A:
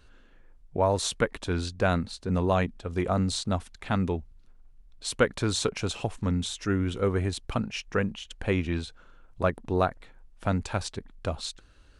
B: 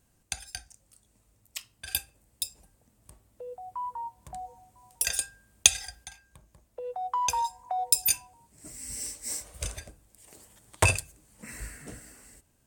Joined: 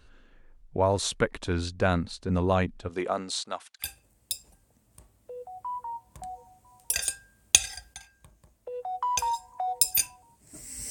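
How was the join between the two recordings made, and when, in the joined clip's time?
A
2.88–3.89 HPF 240 Hz -> 1300 Hz
3.84 switch to B from 1.95 s, crossfade 0.10 s

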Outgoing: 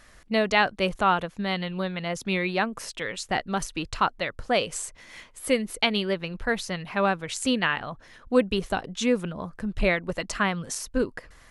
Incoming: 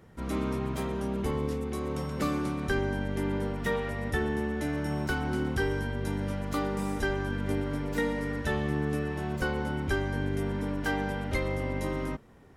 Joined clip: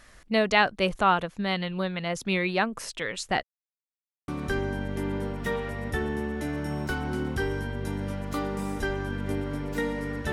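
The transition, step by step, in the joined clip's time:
outgoing
3.43–4.28 mute
4.28 switch to incoming from 2.48 s

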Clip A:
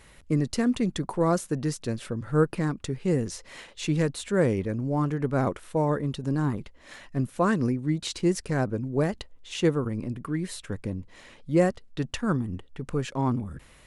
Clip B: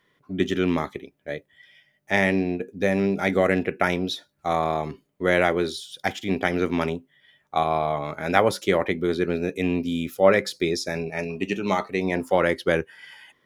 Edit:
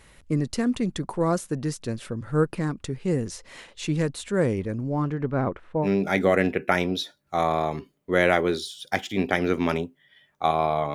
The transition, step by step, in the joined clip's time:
clip A
4.82–5.88 LPF 7400 Hz -> 1300 Hz
5.85 switch to clip B from 2.97 s, crossfade 0.06 s

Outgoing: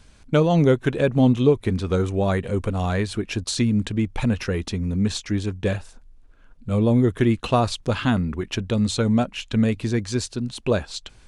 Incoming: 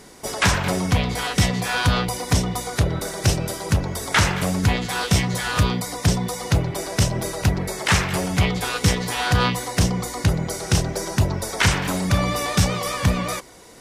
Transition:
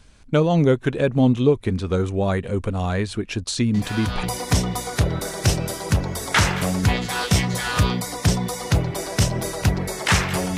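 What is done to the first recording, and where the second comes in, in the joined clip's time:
outgoing
3.74 add incoming from 1.54 s 0.49 s -8.5 dB
4.23 switch to incoming from 2.03 s

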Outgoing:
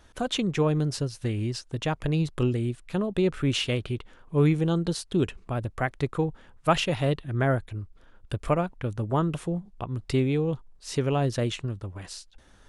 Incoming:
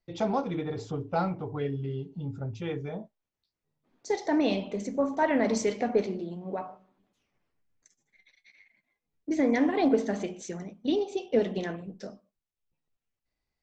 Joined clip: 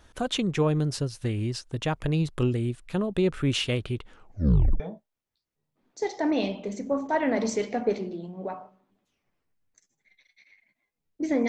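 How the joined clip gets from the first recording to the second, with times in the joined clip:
outgoing
4.12 tape stop 0.68 s
4.8 switch to incoming from 2.88 s

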